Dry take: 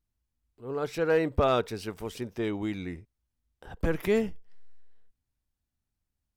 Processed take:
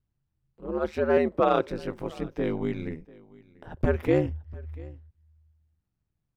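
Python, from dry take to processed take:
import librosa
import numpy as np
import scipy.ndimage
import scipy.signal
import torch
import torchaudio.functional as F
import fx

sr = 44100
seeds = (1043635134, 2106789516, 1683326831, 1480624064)

p1 = fx.highpass(x, sr, hz=180.0, slope=24, at=(1.17, 1.68))
p2 = p1 + fx.echo_single(p1, sr, ms=691, db=-23.0, dry=0)
p3 = p2 * np.sin(2.0 * np.pi * 78.0 * np.arange(len(p2)) / sr)
p4 = fx.lowpass(p3, sr, hz=1700.0, slope=6)
y = F.gain(torch.from_numpy(p4), 6.0).numpy()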